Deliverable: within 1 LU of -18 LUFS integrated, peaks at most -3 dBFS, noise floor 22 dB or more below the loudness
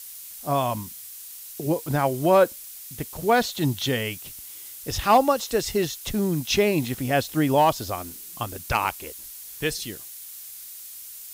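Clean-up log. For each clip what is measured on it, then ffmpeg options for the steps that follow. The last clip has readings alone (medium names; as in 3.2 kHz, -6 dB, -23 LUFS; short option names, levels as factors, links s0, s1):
noise floor -41 dBFS; noise floor target -46 dBFS; loudness -24.0 LUFS; peak level -8.0 dBFS; loudness target -18.0 LUFS
-> -af "afftdn=nr=6:nf=-41"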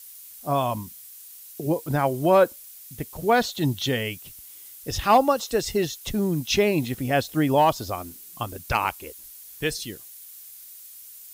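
noise floor -45 dBFS; noise floor target -46 dBFS
-> -af "afftdn=nr=6:nf=-45"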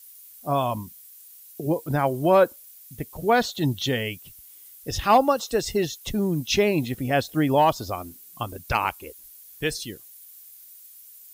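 noise floor -48 dBFS; loudness -24.0 LUFS; peak level -8.0 dBFS; loudness target -18.0 LUFS
-> -af "volume=2,alimiter=limit=0.708:level=0:latency=1"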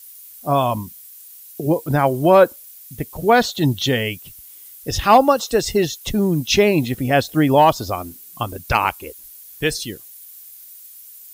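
loudness -18.0 LUFS; peak level -3.0 dBFS; noise floor -42 dBFS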